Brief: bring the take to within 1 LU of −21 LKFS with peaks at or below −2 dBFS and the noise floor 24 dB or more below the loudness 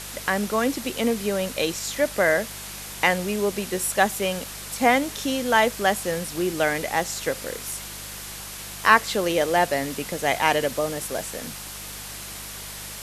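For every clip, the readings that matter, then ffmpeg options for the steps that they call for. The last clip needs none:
mains hum 50 Hz; hum harmonics up to 200 Hz; level of the hum −43 dBFS; background noise floor −37 dBFS; target noise floor −49 dBFS; integrated loudness −24.5 LKFS; sample peak −1.5 dBFS; target loudness −21.0 LKFS
→ -af "bandreject=frequency=50:width_type=h:width=4,bandreject=frequency=100:width_type=h:width=4,bandreject=frequency=150:width_type=h:width=4,bandreject=frequency=200:width_type=h:width=4"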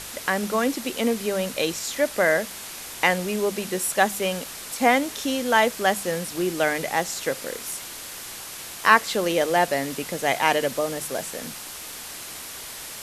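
mains hum none found; background noise floor −38 dBFS; target noise floor −48 dBFS
→ -af "afftdn=noise_reduction=10:noise_floor=-38"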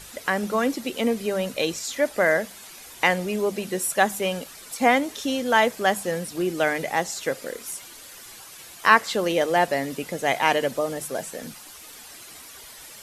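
background noise floor −44 dBFS; target noise floor −48 dBFS
→ -af "afftdn=noise_reduction=6:noise_floor=-44"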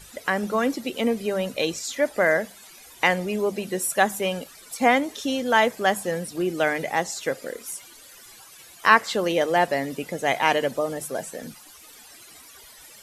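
background noise floor −48 dBFS; integrated loudness −24.0 LKFS; sample peak −1.5 dBFS; target loudness −21.0 LKFS
→ -af "volume=3dB,alimiter=limit=-2dB:level=0:latency=1"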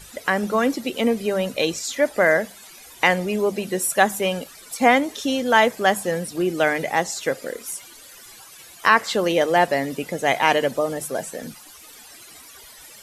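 integrated loudness −21.0 LKFS; sample peak −2.0 dBFS; background noise floor −45 dBFS

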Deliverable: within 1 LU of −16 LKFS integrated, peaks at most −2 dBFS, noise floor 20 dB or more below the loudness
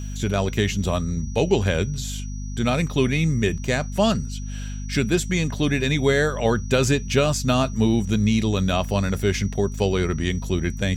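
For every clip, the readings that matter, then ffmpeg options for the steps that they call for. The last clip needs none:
mains hum 50 Hz; hum harmonics up to 250 Hz; level of the hum −28 dBFS; interfering tone 5,800 Hz; level of the tone −44 dBFS; integrated loudness −22.5 LKFS; sample peak −7.0 dBFS; target loudness −16.0 LKFS
→ -af "bandreject=frequency=50:width_type=h:width=4,bandreject=frequency=100:width_type=h:width=4,bandreject=frequency=150:width_type=h:width=4,bandreject=frequency=200:width_type=h:width=4,bandreject=frequency=250:width_type=h:width=4"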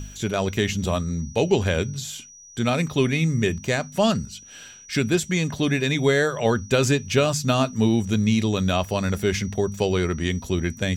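mains hum none found; interfering tone 5,800 Hz; level of the tone −44 dBFS
→ -af "bandreject=frequency=5800:width=30"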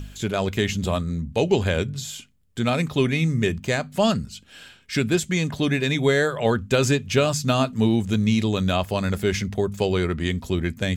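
interfering tone none found; integrated loudness −23.0 LKFS; sample peak −7.5 dBFS; target loudness −16.0 LKFS
→ -af "volume=7dB,alimiter=limit=-2dB:level=0:latency=1"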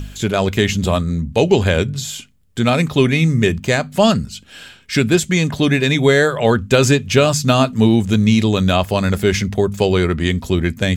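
integrated loudness −16.0 LKFS; sample peak −2.0 dBFS; background noise floor −44 dBFS

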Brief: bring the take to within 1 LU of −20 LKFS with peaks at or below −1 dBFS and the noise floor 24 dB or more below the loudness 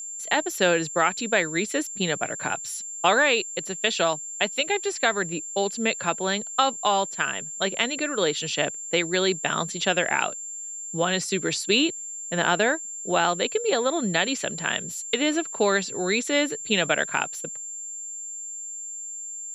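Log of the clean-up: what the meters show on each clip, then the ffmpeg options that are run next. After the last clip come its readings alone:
interfering tone 7,300 Hz; level of the tone −33 dBFS; integrated loudness −24.5 LKFS; sample peak −6.5 dBFS; target loudness −20.0 LKFS
→ -af "bandreject=frequency=7300:width=30"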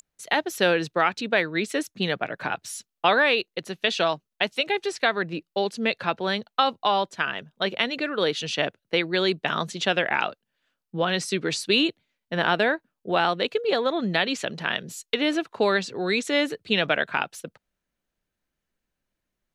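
interfering tone none found; integrated loudness −25.0 LKFS; sample peak −6.5 dBFS; target loudness −20.0 LKFS
→ -af "volume=5dB"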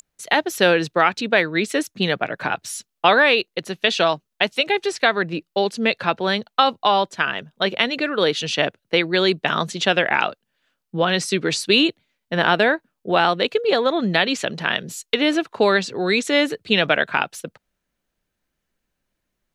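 integrated loudness −20.0 LKFS; sample peak −1.5 dBFS; background noise floor −79 dBFS

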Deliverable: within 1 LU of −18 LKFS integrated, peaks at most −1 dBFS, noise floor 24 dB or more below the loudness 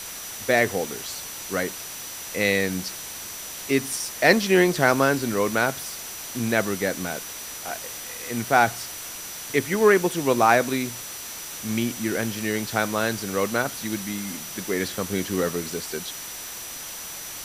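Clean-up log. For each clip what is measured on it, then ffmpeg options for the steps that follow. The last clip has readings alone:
interfering tone 5,900 Hz; level of the tone −40 dBFS; background noise floor −36 dBFS; target noise floor −49 dBFS; integrated loudness −25.0 LKFS; sample peak −2.0 dBFS; target loudness −18.0 LKFS
→ -af "bandreject=frequency=5900:width=30"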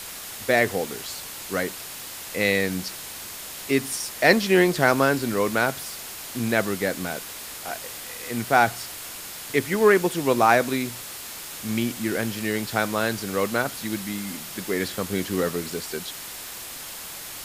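interfering tone none found; background noise floor −37 dBFS; target noise floor −49 dBFS
→ -af "afftdn=noise_reduction=12:noise_floor=-37"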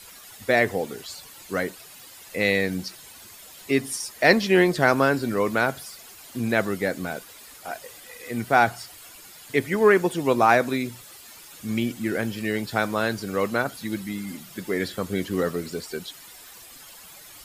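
background noise floor −46 dBFS; target noise floor −48 dBFS
→ -af "afftdn=noise_reduction=6:noise_floor=-46"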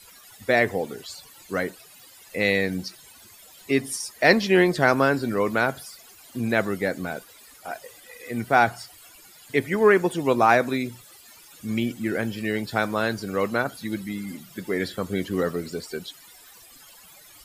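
background noise floor −50 dBFS; integrated loudness −24.0 LKFS; sample peak −2.0 dBFS; target loudness −18.0 LKFS
→ -af "volume=6dB,alimiter=limit=-1dB:level=0:latency=1"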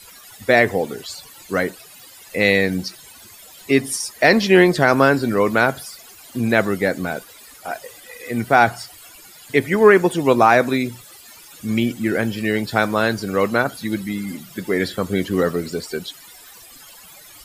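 integrated loudness −18.5 LKFS; sample peak −1.0 dBFS; background noise floor −44 dBFS

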